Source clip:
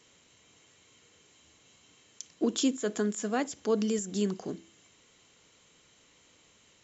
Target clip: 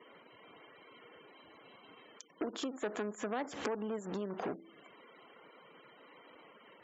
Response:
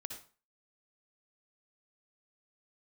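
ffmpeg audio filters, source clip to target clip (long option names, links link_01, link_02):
-filter_complex "[0:a]asettb=1/sr,asplit=3[link_01][link_02][link_03];[link_01]atrim=end=2.534[link_04];[link_02]atrim=start=2.53:end=4.54,asetpts=PTS-STARTPTS,afade=type=in:duration=0.004:curve=qsin,afade=type=out:start_time=2.006:duration=0.004:curve=qsin,aeval=exprs='val(0)+0.5*0.0106*sgn(val(0))':channel_layout=same[link_05];[link_03]atrim=start=4.536[link_06];[link_04][link_05]acrossfade=duration=0.004:curve1=hsin:curve2=qsin[link_07];[link_07][link_06]acrossfade=duration=0.004:curve1=qsin:curve2=hsin,alimiter=level_in=2dB:limit=-24dB:level=0:latency=1:release=385,volume=-2dB,lowpass=1300,acompressor=threshold=-43dB:ratio=12,aeval=exprs='0.02*(cos(1*acos(clip(val(0)/0.02,-1,1)))-cos(1*PI/2))+0.002*(cos(6*acos(clip(val(0)/0.02,-1,1)))-cos(6*PI/2))':channel_layout=same,highpass=frequency=600:poles=1,aemphasis=mode=production:type=75kf,afftfilt=real='re*gte(hypot(re,im),0.000447)':imag='im*gte(hypot(re,im),0.000447)':win_size=1024:overlap=0.75,volume=14dB"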